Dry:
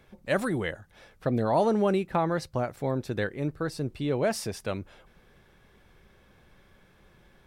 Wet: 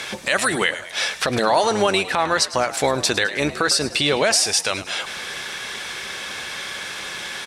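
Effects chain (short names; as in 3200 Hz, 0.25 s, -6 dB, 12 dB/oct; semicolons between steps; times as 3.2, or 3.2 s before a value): octaver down 1 oct, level -5 dB; weighting filter ITU-R 468; compressor 5:1, threshold -45 dBFS, peak gain reduction 20.5 dB; frequency-shifting echo 0.105 s, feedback 54%, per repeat +75 Hz, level -16 dB; maximiser +33.5 dB; gain -5.5 dB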